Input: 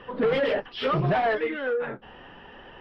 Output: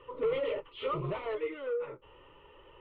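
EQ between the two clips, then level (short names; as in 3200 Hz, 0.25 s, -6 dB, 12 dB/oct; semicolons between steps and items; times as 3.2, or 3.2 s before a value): high shelf 3900 Hz -10 dB; fixed phaser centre 1100 Hz, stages 8; -6.0 dB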